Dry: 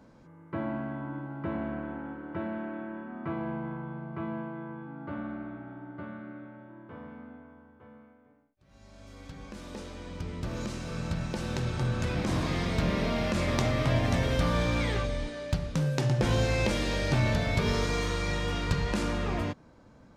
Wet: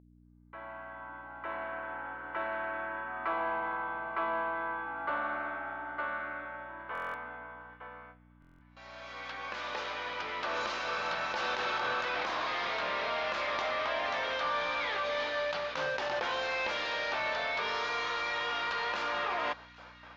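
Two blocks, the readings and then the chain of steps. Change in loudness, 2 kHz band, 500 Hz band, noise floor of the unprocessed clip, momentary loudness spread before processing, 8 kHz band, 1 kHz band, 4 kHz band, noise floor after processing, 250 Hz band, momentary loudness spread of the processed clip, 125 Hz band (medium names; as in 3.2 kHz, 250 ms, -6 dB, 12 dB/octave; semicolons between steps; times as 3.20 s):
-3.0 dB, +4.0 dB, -3.0 dB, -57 dBFS, 17 LU, -10.0 dB, +5.0 dB, +0.5 dB, -59 dBFS, -17.0 dB, 13 LU, -27.5 dB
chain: fade-in on the opening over 4.53 s; high-pass 870 Hz 12 dB/octave; gate with hold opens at -55 dBFS; dynamic bell 2.1 kHz, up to -4 dB, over -51 dBFS, Q 1.3; in parallel at +2.5 dB: compressor with a negative ratio -44 dBFS, ratio -0.5; on the sum: hum 60 Hz, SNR 16 dB; overdrive pedal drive 16 dB, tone 3.8 kHz, clips at -13.5 dBFS; distance through air 200 m; on a send: feedback echo behind a high-pass 807 ms, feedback 46%, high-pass 1.6 kHz, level -20 dB; on the sum: resampled via 16 kHz; buffer glitch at 6.93/8.40 s, samples 1024, times 8; trim -3.5 dB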